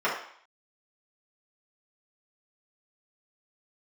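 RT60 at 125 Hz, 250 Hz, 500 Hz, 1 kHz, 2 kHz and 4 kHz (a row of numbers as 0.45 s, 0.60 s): 0.25 s, 0.50 s, 0.55 s, 0.60 s, 0.60 s, 0.60 s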